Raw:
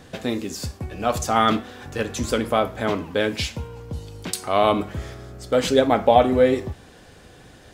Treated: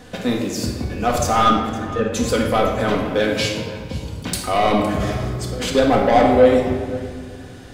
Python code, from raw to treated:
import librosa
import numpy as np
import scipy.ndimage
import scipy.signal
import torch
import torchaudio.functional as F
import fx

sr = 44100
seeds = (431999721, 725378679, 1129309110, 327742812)

y = fx.spec_expand(x, sr, power=1.5, at=(1.48, 2.13))
y = fx.highpass(y, sr, hz=fx.line((3.19, 65.0), (3.78, 180.0)), slope=24, at=(3.19, 3.78), fade=0.02)
y = fx.over_compress(y, sr, threshold_db=-29.0, ratio=-1.0, at=(4.87, 5.75))
y = 10.0 ** (-13.5 / 20.0) * np.tanh(y / 10.0 ** (-13.5 / 20.0))
y = y + 10.0 ** (-18.5 / 20.0) * np.pad(y, (int(511 * sr / 1000.0), 0))[:len(y)]
y = fx.room_shoebox(y, sr, seeds[0], volume_m3=1600.0, walls='mixed', distance_m=1.9)
y = y * 10.0 ** (2.5 / 20.0)